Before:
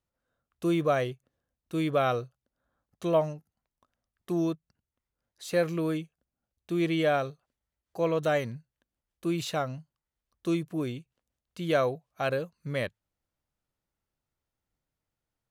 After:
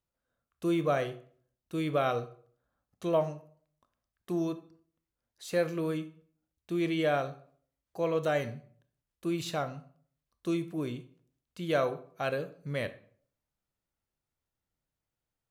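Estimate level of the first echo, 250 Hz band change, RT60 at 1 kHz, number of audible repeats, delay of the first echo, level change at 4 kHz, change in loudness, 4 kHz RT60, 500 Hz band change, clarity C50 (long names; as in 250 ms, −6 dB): no echo audible, −2.5 dB, 0.50 s, no echo audible, no echo audible, −3.0 dB, −2.5 dB, 0.40 s, −2.5 dB, 14.5 dB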